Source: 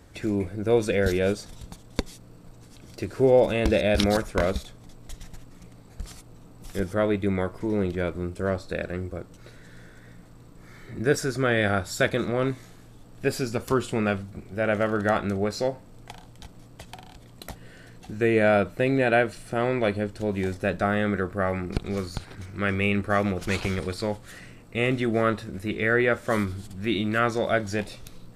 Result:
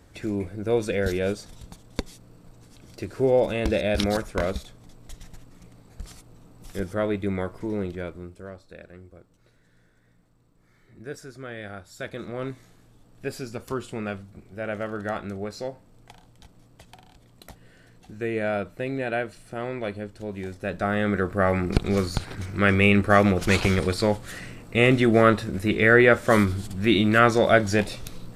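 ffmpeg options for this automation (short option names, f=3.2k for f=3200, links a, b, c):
-af "volume=18.5dB,afade=t=out:st=7.62:d=0.89:silence=0.237137,afade=t=in:st=11.93:d=0.5:silence=0.398107,afade=t=in:st=20.56:d=1.18:silence=0.237137"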